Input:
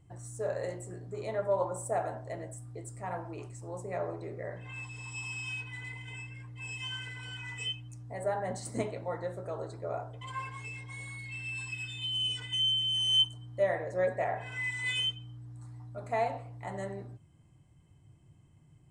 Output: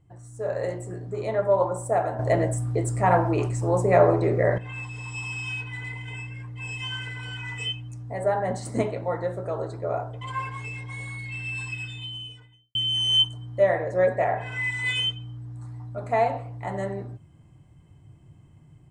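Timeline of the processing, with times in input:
0:02.19–0:04.58: clip gain +10 dB
0:11.65–0:12.75: fade out and dull
whole clip: high-shelf EQ 3,500 Hz −7.5 dB; automatic gain control gain up to 8.5 dB

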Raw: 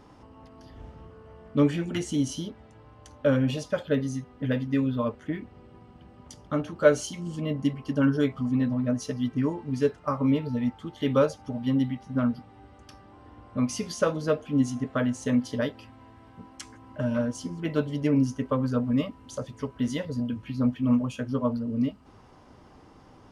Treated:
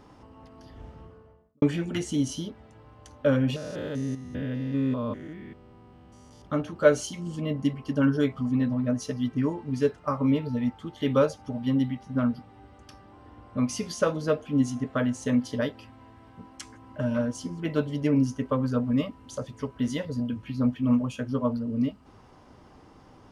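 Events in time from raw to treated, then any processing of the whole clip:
0:00.96–0:01.62: fade out and dull
0:03.56–0:06.42: spectrum averaged block by block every 200 ms

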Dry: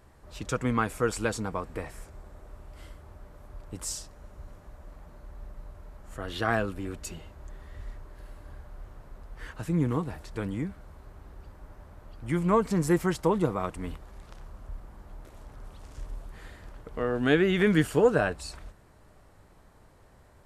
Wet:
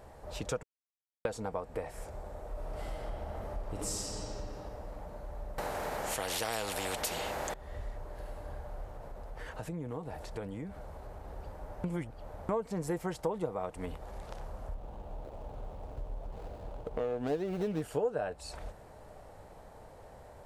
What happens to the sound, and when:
0:00.63–0:01.25: silence
0:02.48–0:03.97: thrown reverb, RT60 2.9 s, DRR −6.5 dB
0:05.58–0:07.54: every bin compressed towards the loudest bin 4 to 1
0:08.85–0:11.28: downward compressor 2 to 1, threshold −44 dBFS
0:11.84–0:12.49: reverse
0:13.34–0:13.86: one half of a high-frequency compander encoder only
0:14.74–0:17.82: running median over 25 samples
whole clip: flat-topped bell 630 Hz +8.5 dB 1.2 octaves; downward compressor 3 to 1, threshold −38 dBFS; level +2 dB

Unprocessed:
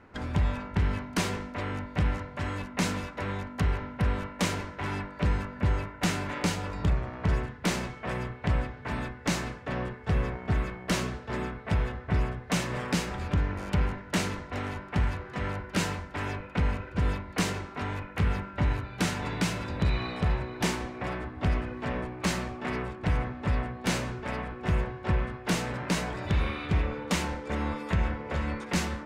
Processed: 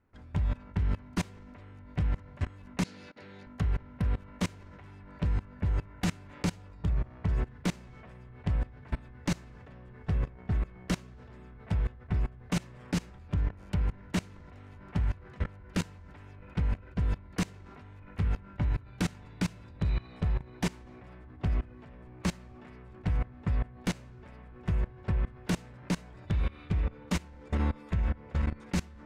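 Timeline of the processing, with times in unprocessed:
0:02.84–0:03.47: loudspeaker in its box 220–9,900 Hz, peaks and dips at 270 Hz −3 dB, 680 Hz −4 dB, 1,100 Hz −10 dB, 4,400 Hz +9 dB, 8,100 Hz −8 dB
whole clip: low-shelf EQ 170 Hz +11.5 dB; output level in coarse steps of 23 dB; level −3 dB

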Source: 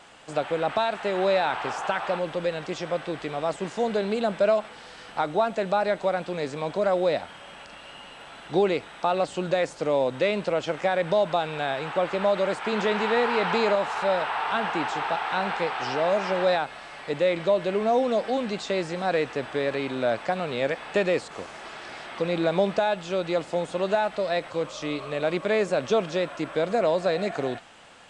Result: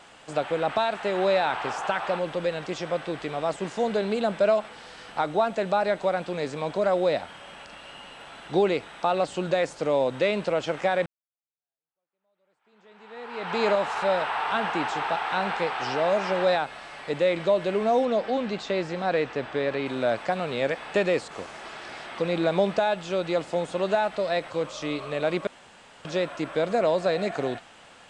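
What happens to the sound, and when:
0:11.06–0:13.65: fade in exponential
0:18.05–0:19.86: high-frequency loss of the air 74 metres
0:25.47–0:26.05: fill with room tone

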